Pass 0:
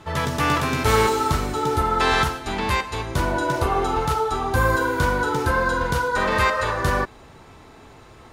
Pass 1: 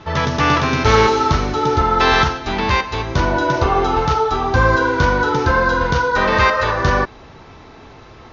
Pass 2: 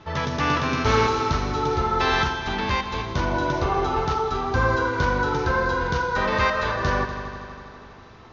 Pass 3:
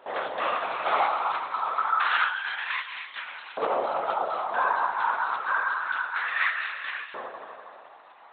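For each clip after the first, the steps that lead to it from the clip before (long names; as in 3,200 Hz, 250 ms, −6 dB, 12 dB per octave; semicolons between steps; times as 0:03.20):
Butterworth low-pass 6,400 Hz 96 dB per octave; level +5.5 dB
echo machine with several playback heads 81 ms, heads all three, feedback 66%, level −16.5 dB; level −7.5 dB
linear-prediction vocoder at 8 kHz whisper; auto-filter high-pass saw up 0.28 Hz 500–2,400 Hz; level −5.5 dB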